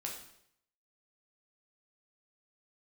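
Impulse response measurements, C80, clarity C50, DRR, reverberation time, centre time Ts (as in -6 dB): 8.5 dB, 5.0 dB, -1.5 dB, 0.70 s, 33 ms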